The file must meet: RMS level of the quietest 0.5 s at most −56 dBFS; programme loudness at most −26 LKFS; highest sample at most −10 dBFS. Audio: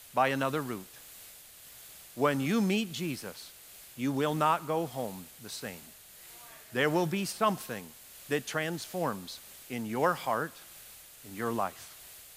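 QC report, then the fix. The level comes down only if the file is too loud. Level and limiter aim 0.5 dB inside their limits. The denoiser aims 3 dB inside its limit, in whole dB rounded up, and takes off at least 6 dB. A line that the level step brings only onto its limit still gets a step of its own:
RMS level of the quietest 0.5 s −52 dBFS: out of spec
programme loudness −32.0 LKFS: in spec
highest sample −13.0 dBFS: in spec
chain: broadband denoise 7 dB, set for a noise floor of −52 dBFS

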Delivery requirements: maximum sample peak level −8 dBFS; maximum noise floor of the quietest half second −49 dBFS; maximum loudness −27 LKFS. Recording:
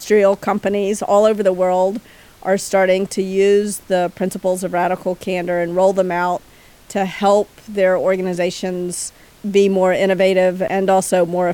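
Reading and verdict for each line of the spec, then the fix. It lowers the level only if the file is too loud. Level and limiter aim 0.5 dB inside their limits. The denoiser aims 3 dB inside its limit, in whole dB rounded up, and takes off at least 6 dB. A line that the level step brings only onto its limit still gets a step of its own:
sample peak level −3.5 dBFS: out of spec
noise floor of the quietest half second −46 dBFS: out of spec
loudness −17.0 LKFS: out of spec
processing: level −10.5 dB

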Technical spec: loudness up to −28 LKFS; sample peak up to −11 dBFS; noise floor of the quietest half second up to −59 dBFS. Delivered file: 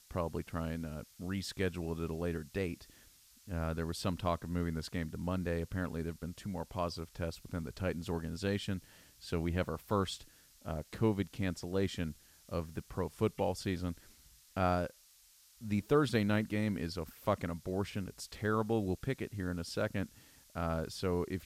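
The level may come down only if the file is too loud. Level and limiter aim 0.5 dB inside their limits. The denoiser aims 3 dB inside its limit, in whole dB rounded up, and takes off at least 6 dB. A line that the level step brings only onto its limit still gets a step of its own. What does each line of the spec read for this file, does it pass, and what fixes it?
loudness −37.0 LKFS: in spec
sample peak −16.0 dBFS: in spec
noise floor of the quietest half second −63 dBFS: in spec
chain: no processing needed

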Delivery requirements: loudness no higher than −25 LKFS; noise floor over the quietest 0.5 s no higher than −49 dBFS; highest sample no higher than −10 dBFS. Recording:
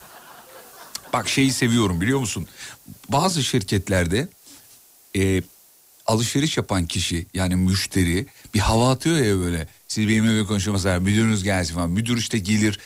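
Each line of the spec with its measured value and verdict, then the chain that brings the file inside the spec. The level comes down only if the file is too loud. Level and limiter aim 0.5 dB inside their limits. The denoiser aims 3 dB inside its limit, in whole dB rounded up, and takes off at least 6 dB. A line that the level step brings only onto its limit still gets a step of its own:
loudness −21.5 LKFS: out of spec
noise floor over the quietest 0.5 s −53 dBFS: in spec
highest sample −8.5 dBFS: out of spec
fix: level −4 dB

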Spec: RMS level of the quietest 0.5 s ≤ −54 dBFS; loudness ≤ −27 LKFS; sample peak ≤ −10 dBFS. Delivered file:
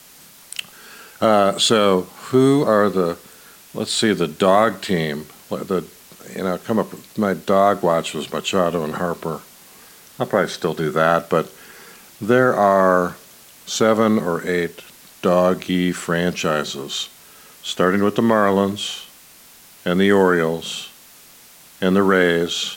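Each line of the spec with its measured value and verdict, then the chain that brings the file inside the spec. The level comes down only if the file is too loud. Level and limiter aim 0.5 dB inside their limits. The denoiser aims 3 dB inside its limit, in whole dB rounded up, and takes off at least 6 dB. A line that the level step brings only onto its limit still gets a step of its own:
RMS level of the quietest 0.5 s −46 dBFS: out of spec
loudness −19.0 LKFS: out of spec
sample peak −3.5 dBFS: out of spec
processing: level −8.5 dB

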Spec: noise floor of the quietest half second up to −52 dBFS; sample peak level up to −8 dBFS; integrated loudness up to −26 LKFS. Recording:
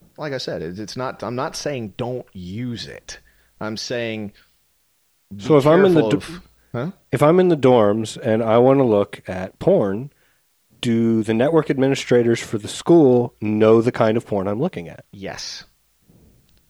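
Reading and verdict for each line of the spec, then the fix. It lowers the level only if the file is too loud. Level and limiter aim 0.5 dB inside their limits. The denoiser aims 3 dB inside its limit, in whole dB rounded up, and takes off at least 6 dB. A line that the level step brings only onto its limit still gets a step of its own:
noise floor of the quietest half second −64 dBFS: in spec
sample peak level −3.0 dBFS: out of spec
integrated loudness −18.5 LKFS: out of spec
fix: level −8 dB

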